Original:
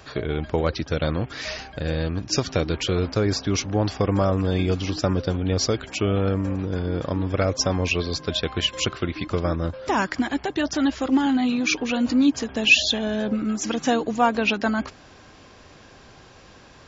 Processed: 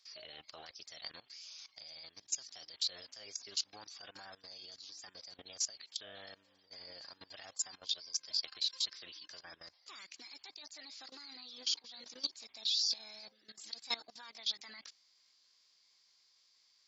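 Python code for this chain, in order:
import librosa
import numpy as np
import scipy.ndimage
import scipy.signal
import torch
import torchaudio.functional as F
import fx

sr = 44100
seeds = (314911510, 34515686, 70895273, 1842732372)

y = fx.bandpass_q(x, sr, hz=3600.0, q=6.3)
y = fx.formant_shift(y, sr, semitones=5)
y = fx.level_steps(y, sr, step_db=19)
y = y * 10.0 ** (5.5 / 20.0)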